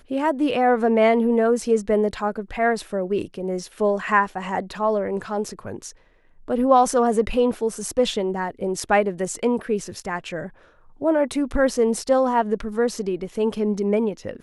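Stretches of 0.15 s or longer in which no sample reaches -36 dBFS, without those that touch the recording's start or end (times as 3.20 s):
5.91–6.48 s
10.49–11.01 s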